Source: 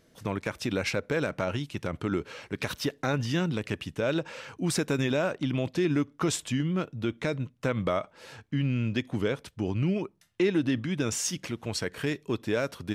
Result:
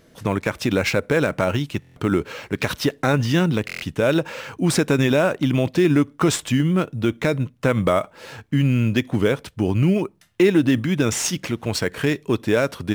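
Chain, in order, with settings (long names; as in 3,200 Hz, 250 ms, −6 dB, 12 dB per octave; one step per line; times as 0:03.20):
in parallel at −10.5 dB: sample-rate reduction 9,200 Hz, jitter 0%
on the sum: buffer that repeats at 0:01.80/0:03.66, samples 1,024, times 6
level +7 dB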